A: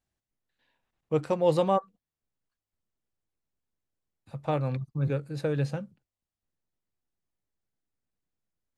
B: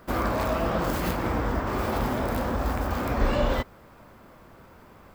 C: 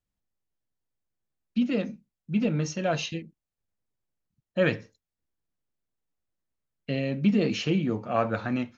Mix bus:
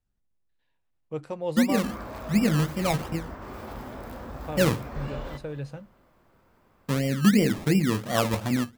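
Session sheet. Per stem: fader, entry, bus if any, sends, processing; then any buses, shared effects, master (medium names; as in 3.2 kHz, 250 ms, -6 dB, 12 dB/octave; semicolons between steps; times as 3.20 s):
-7.0 dB, 0.00 s, no send, no echo send, none
-12.0 dB, 1.75 s, no send, echo send -17 dB, none
-1.0 dB, 0.00 s, no send, no echo send, steep low-pass 3.9 kHz 72 dB/octave; tilt EQ -2 dB/octave; decimation with a swept rate 24×, swing 60% 2.8 Hz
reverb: none
echo: feedback delay 222 ms, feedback 44%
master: none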